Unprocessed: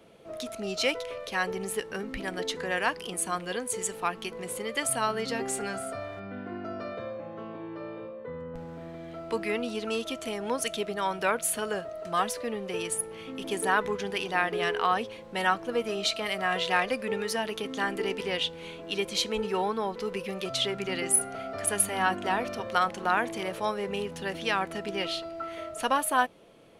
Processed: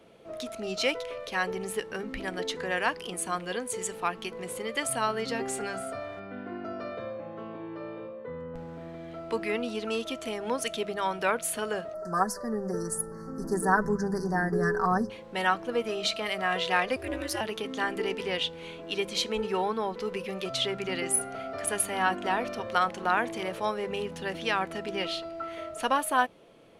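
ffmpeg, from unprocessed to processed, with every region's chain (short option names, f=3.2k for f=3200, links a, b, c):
-filter_complex "[0:a]asettb=1/sr,asplit=3[a][b][c];[a]atrim=end=11.944[d];[b]atrim=start=11.94:end=15.1,asetpts=PTS-STARTPTS,afade=t=in:d=0.004:c=qsin,afade=t=out:st=3.156:d=0.004:c=qsin,asubboost=boost=5.5:cutoff=230,asuperstop=centerf=2900:order=12:qfactor=1,aecho=1:1:5.2:0.75,atrim=end_sample=139356[e];[c]atrim=start=15.096[f];[d][e]acrossfade=d=0.004:c1=hsin:c2=qsin[g];[g][f]acrossfade=d=0.004:c1=qsin:c2=hsin,asettb=1/sr,asplit=3[h][i][j];[h]atrim=end=16.964[k];[i]atrim=start=16.96:end=17.41,asetpts=PTS-STARTPTS,afade=t=in:d=0.004:c=qsin,afade=t=out:st=0.446:d=0.004:c=qsin,highshelf=f=7.6k:g=10.5,aeval=exprs='val(0)*sin(2*PI*130*n/s)':c=same[l];[j]atrim=start=17.406[m];[k][l]acrossfade=d=0.004:c1=hsin:c2=qsin[n];[n][m]acrossfade=d=0.004:c1=qsin:c2=hsin,highshelf=f=7k:g=-4.5,bandreject=f=50:t=h:w=6,bandreject=f=100:t=h:w=6,bandreject=f=150:t=h:w=6,bandreject=f=200:t=h:w=6"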